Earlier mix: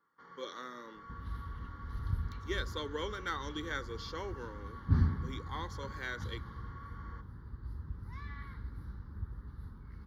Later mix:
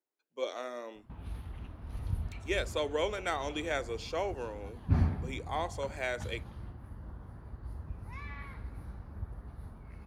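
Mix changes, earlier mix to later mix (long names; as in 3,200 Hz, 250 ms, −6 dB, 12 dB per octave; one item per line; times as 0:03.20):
first sound: muted
master: remove phaser with its sweep stopped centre 2,500 Hz, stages 6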